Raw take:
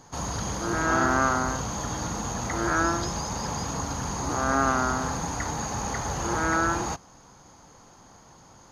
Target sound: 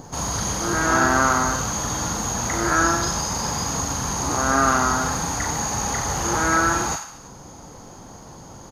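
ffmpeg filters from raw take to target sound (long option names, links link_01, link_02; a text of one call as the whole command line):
ffmpeg -i in.wav -filter_complex "[0:a]highshelf=frequency=8400:gain=10.5,acrossover=split=810[link_01][link_02];[link_01]acompressor=mode=upward:threshold=-36dB:ratio=2.5[link_03];[link_02]aecho=1:1:40|90|152.5|230.6|328.3:0.631|0.398|0.251|0.158|0.1[link_04];[link_03][link_04]amix=inputs=2:normalize=0,volume=3.5dB" out.wav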